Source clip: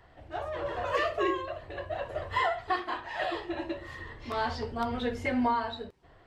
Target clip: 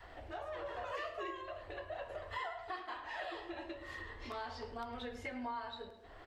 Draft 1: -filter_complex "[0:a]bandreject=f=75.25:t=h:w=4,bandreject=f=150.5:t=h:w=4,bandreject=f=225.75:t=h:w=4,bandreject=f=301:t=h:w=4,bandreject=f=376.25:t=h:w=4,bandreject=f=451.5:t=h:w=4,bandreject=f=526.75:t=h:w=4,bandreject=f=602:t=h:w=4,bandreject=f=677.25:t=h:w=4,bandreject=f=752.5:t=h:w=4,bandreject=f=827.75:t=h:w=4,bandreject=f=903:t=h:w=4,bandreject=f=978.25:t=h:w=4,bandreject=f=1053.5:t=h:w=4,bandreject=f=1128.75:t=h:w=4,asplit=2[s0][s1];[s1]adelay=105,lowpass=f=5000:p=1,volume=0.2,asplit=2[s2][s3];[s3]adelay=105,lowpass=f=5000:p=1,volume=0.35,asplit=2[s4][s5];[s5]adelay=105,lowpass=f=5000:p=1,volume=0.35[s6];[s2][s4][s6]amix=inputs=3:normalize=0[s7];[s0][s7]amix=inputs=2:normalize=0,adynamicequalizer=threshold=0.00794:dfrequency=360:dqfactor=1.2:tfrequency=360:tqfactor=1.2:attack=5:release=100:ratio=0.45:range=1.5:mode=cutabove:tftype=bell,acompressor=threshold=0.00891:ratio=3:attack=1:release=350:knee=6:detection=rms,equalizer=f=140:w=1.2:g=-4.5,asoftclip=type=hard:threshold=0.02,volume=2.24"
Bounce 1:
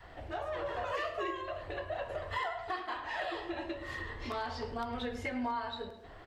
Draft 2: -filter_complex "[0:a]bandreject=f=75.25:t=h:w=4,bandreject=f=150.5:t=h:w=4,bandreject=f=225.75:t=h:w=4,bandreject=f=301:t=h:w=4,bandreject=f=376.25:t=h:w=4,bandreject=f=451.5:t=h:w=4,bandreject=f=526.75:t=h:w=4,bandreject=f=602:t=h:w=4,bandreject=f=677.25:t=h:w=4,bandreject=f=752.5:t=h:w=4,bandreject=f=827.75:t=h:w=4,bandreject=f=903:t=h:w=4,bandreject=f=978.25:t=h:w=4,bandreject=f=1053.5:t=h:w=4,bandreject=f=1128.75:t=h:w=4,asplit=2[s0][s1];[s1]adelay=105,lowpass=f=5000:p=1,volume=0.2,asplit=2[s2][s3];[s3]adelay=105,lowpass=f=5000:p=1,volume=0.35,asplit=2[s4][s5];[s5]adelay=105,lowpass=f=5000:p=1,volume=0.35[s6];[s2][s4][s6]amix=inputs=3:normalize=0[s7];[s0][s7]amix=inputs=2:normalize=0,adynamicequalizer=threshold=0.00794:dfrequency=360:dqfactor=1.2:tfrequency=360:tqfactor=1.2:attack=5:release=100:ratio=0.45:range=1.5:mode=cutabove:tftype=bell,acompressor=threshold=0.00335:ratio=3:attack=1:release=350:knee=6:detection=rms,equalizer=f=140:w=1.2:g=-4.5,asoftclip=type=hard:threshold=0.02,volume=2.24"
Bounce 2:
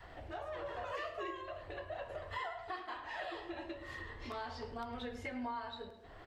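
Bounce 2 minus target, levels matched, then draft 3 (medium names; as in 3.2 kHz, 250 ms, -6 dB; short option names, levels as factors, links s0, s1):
125 Hz band +2.5 dB
-filter_complex "[0:a]bandreject=f=75.25:t=h:w=4,bandreject=f=150.5:t=h:w=4,bandreject=f=225.75:t=h:w=4,bandreject=f=301:t=h:w=4,bandreject=f=376.25:t=h:w=4,bandreject=f=451.5:t=h:w=4,bandreject=f=526.75:t=h:w=4,bandreject=f=602:t=h:w=4,bandreject=f=677.25:t=h:w=4,bandreject=f=752.5:t=h:w=4,bandreject=f=827.75:t=h:w=4,bandreject=f=903:t=h:w=4,bandreject=f=978.25:t=h:w=4,bandreject=f=1053.5:t=h:w=4,bandreject=f=1128.75:t=h:w=4,asplit=2[s0][s1];[s1]adelay=105,lowpass=f=5000:p=1,volume=0.2,asplit=2[s2][s3];[s3]adelay=105,lowpass=f=5000:p=1,volume=0.35,asplit=2[s4][s5];[s5]adelay=105,lowpass=f=5000:p=1,volume=0.35[s6];[s2][s4][s6]amix=inputs=3:normalize=0[s7];[s0][s7]amix=inputs=2:normalize=0,adynamicequalizer=threshold=0.00794:dfrequency=360:dqfactor=1.2:tfrequency=360:tqfactor=1.2:attack=5:release=100:ratio=0.45:range=1.5:mode=cutabove:tftype=bell,acompressor=threshold=0.00335:ratio=3:attack=1:release=350:knee=6:detection=rms,equalizer=f=140:w=1.2:g=-11,asoftclip=type=hard:threshold=0.02,volume=2.24"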